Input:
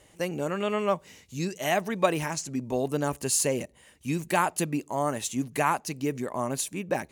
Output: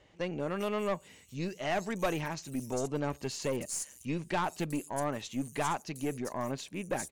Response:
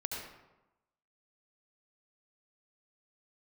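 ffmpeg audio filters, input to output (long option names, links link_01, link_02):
-filter_complex "[0:a]acrossover=split=5600[link_01][link_02];[link_02]adelay=400[link_03];[link_01][link_03]amix=inputs=2:normalize=0,acrossover=split=8300[link_04][link_05];[link_05]acompressor=threshold=-44dB:ratio=4:attack=1:release=60[link_06];[link_04][link_06]amix=inputs=2:normalize=0,aeval=exprs='(tanh(11.2*val(0)+0.35)-tanh(0.35))/11.2':channel_layout=same,volume=-3dB"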